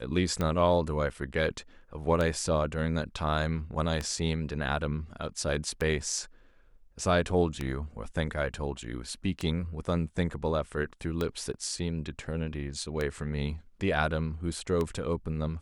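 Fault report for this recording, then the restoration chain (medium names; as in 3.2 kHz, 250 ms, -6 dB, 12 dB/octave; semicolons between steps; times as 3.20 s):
tick 33 1/3 rpm -17 dBFS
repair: de-click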